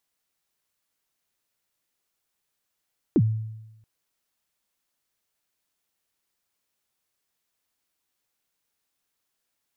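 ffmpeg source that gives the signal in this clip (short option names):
-f lavfi -i "aevalsrc='0.211*pow(10,-3*t/0.99)*sin(2*PI*(390*0.052/log(110/390)*(exp(log(110/390)*min(t,0.052)/0.052)-1)+110*max(t-0.052,0)))':d=0.68:s=44100"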